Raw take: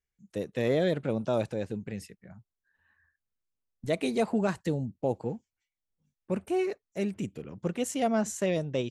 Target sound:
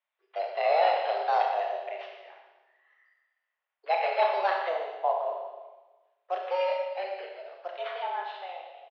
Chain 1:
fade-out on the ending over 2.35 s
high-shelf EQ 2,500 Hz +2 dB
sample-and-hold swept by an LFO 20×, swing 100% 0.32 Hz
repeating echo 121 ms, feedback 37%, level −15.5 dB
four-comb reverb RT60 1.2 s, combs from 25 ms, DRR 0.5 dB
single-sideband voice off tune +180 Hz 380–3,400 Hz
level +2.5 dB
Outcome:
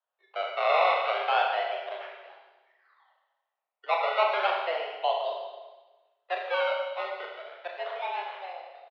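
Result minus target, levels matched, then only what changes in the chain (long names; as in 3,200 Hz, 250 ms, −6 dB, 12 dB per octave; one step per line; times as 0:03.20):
sample-and-hold swept by an LFO: distortion +10 dB
change: sample-and-hold swept by an LFO 7×, swing 100% 0.32 Hz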